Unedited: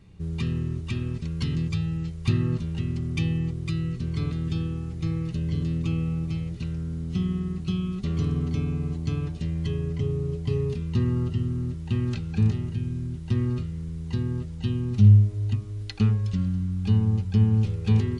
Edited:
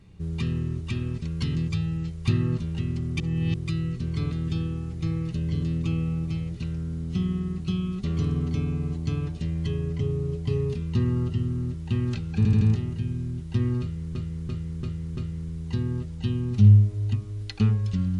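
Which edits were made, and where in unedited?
3.20–3.54 s: reverse
12.37 s: stutter 0.08 s, 4 plays
13.57–13.91 s: loop, 5 plays

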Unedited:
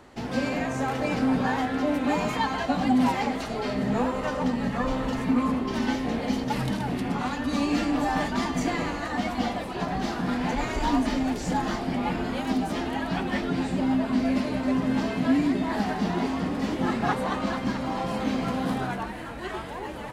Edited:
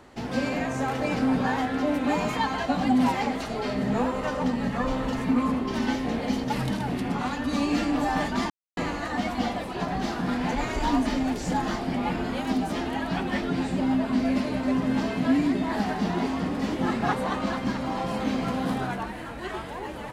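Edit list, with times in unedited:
8.50–8.77 s: mute

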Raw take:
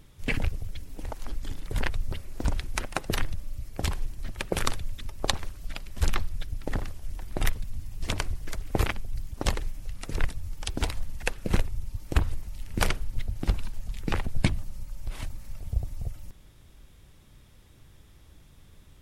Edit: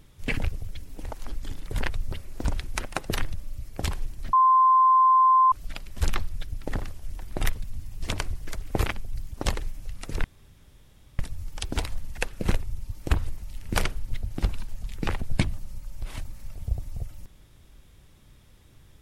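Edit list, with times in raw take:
4.33–5.52 s: bleep 1.04 kHz -14.5 dBFS
10.24 s: insert room tone 0.95 s

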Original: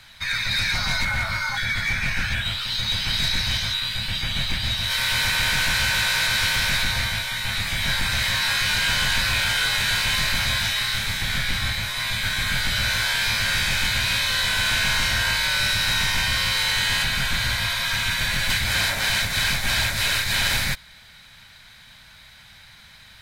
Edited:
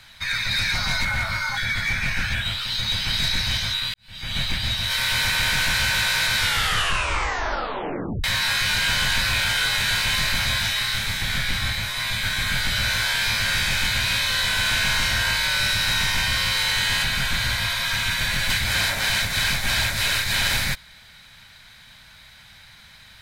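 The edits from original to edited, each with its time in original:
3.94–4.36 s: fade in quadratic
6.39 s: tape stop 1.85 s

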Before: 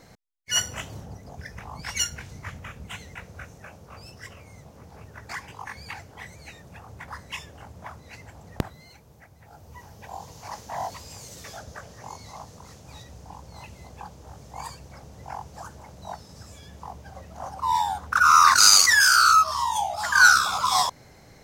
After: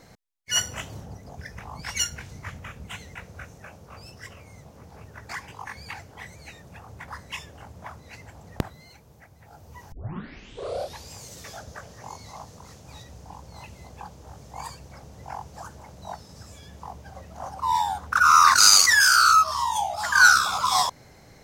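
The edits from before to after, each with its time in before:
9.92 s: tape start 1.18 s

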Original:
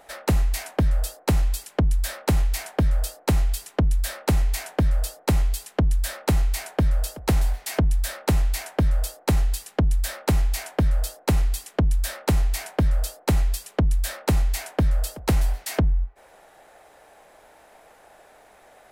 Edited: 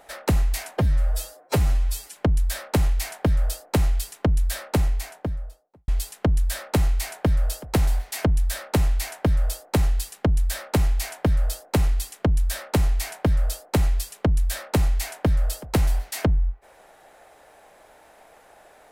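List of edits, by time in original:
0.78–1.70 s: stretch 1.5×
4.13–5.42 s: studio fade out

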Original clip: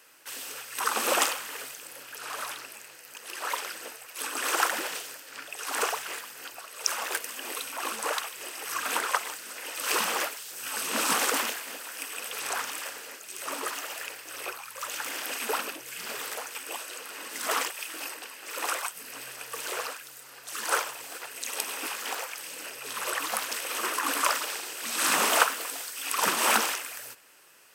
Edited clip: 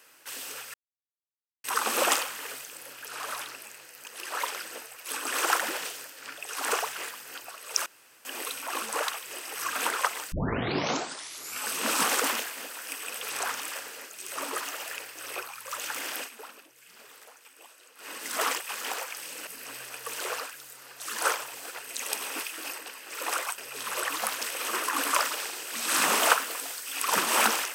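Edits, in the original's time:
0.74 s: insert silence 0.90 s
6.96–7.35 s: room tone
9.42 s: tape start 1.34 s
15.28–17.19 s: dip -15.5 dB, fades 0.13 s
17.79–18.94 s: swap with 21.90–22.68 s

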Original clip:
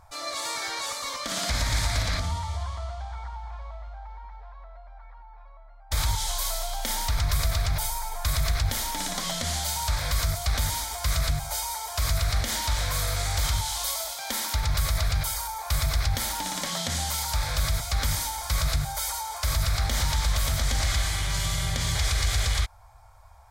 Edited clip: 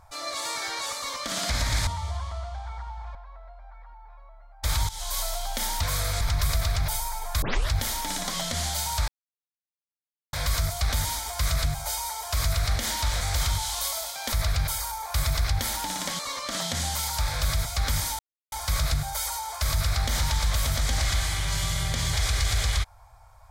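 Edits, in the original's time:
0.96–1.37 s: copy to 16.75 s
1.87–2.33 s: delete
3.61–4.43 s: delete
6.17–6.46 s: fade in, from -13.5 dB
8.32 s: tape start 0.28 s
9.98 s: insert silence 1.25 s
12.86–13.24 s: move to 7.11 s
14.35–14.88 s: delete
18.34 s: insert silence 0.33 s

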